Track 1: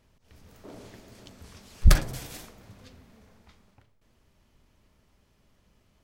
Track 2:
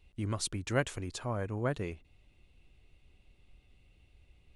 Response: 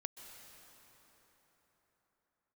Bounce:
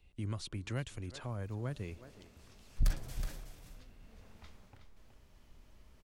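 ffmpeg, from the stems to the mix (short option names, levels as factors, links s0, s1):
-filter_complex "[0:a]asubboost=boost=2:cutoff=74,asoftclip=type=tanh:threshold=0.316,adelay=950,volume=0.794,afade=t=in:st=3.98:d=0.44:silence=0.266073,asplit=3[s0][s1][s2];[s1]volume=0.501[s3];[s2]volume=0.473[s4];[1:a]acrossover=split=4200[s5][s6];[s6]acompressor=threshold=0.00316:ratio=4:attack=1:release=60[s7];[s5][s7]amix=inputs=2:normalize=0,volume=0.75,asplit=3[s8][s9][s10];[s9]volume=0.0668[s11];[s10]volume=0.0841[s12];[2:a]atrim=start_sample=2205[s13];[s3][s11]amix=inputs=2:normalize=0[s14];[s14][s13]afir=irnorm=-1:irlink=0[s15];[s4][s12]amix=inputs=2:normalize=0,aecho=0:1:370:1[s16];[s0][s8][s15][s16]amix=inputs=4:normalize=0,acrossover=split=190|3000[s17][s18][s19];[s18]acompressor=threshold=0.00501:ratio=2.5[s20];[s17][s20][s19]amix=inputs=3:normalize=0"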